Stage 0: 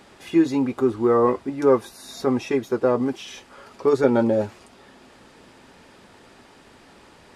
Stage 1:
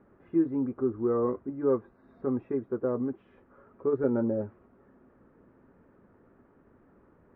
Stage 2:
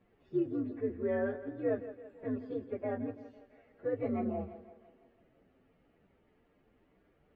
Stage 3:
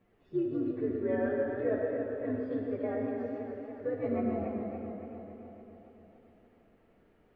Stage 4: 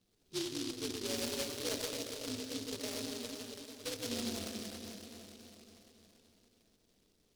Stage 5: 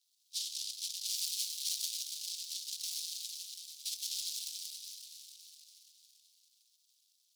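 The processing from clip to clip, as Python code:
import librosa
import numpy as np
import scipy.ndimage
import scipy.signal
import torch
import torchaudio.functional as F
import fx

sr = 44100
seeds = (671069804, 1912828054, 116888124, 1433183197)

y1 = scipy.signal.sosfilt(scipy.signal.butter(4, 1300.0, 'lowpass', fs=sr, output='sos'), x)
y1 = fx.peak_eq(y1, sr, hz=830.0, db=-10.5, octaves=0.92)
y1 = y1 * 10.0 ** (-6.5 / 20.0)
y2 = fx.partial_stretch(y1, sr, pct=126)
y2 = fx.echo_split(y2, sr, split_hz=310.0, low_ms=89, high_ms=167, feedback_pct=52, wet_db=-13.0)
y2 = y2 * 10.0 ** (-5.0 / 20.0)
y3 = fx.rev_freeverb(y2, sr, rt60_s=2.6, hf_ratio=0.6, predelay_ms=30, drr_db=1.5)
y3 = fx.echo_warbled(y3, sr, ms=281, feedback_pct=62, rate_hz=2.8, cents=67, wet_db=-8)
y4 = fx.noise_mod_delay(y3, sr, seeds[0], noise_hz=4200.0, depth_ms=0.29)
y4 = y4 * 10.0 ** (-7.5 / 20.0)
y5 = scipy.signal.sosfilt(scipy.signal.cheby2(4, 50, 1400.0, 'highpass', fs=sr, output='sos'), y4)
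y5 = y5 * 10.0 ** (5.5 / 20.0)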